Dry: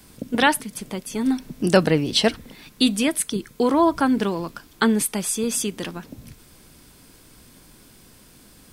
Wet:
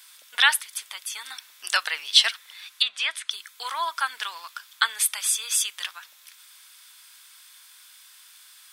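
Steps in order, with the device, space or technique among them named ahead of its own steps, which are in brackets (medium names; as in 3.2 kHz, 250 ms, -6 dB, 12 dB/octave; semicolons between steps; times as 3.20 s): headphones lying on a table (high-pass 1.2 kHz 24 dB/octave; peaking EQ 3.5 kHz +6 dB 0.26 oct); 2.40–3.31 s: low-pass that closes with the level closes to 2.3 kHz, closed at -19 dBFS; trim +2 dB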